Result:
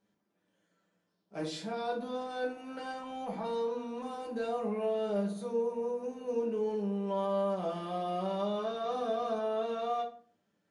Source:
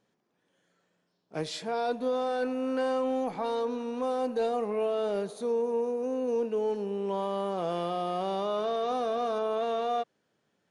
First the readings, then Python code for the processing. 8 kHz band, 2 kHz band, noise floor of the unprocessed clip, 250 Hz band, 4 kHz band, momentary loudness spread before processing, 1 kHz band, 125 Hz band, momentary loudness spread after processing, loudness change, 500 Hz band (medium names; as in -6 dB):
no reading, -3.5 dB, -77 dBFS, -3.0 dB, -4.5 dB, 3 LU, -4.5 dB, +1.0 dB, 8 LU, -4.0 dB, -4.5 dB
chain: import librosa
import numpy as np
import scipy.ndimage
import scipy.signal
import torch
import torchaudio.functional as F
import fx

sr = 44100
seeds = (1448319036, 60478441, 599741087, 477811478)

y = fx.rev_fdn(x, sr, rt60_s=0.44, lf_ratio=1.55, hf_ratio=0.7, size_ms=30.0, drr_db=-1.5)
y = y * 10.0 ** (-8.0 / 20.0)